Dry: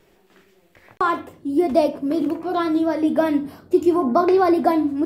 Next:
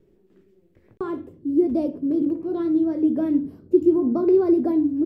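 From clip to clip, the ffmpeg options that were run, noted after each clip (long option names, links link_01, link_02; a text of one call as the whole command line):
ffmpeg -i in.wav -af "firequalizer=gain_entry='entry(390,0);entry(710,-17);entry(2400,-19)':delay=0.05:min_phase=1" out.wav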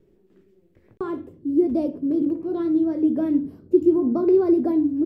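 ffmpeg -i in.wav -af anull out.wav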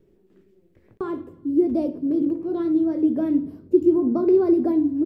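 ffmpeg -i in.wav -af "aecho=1:1:95|190|285|380:0.0794|0.0469|0.0277|0.0163" out.wav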